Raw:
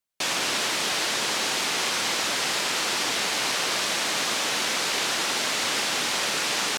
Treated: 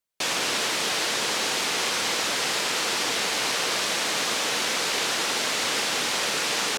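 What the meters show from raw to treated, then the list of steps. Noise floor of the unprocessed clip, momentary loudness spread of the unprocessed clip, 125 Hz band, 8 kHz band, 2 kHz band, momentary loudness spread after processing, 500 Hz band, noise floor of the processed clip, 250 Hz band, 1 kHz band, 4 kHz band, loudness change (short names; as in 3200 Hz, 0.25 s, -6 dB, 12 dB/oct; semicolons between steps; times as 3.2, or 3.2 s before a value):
-27 dBFS, 0 LU, 0.0 dB, 0.0 dB, 0.0 dB, 0 LU, +1.5 dB, -27 dBFS, 0.0 dB, 0.0 dB, 0.0 dB, 0.0 dB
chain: bell 470 Hz +4.5 dB 0.24 oct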